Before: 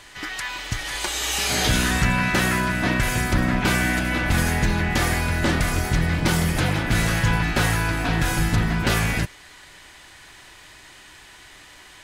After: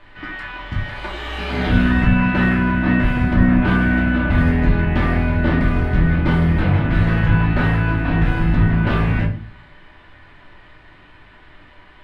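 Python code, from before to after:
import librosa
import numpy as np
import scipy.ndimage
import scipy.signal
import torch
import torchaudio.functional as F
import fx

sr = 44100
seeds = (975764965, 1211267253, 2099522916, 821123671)

y = fx.air_absorb(x, sr, metres=450.0)
y = fx.room_shoebox(y, sr, seeds[0], volume_m3=300.0, walls='furnished', distance_m=2.6)
y = F.gain(torch.from_numpy(y), -1.5).numpy()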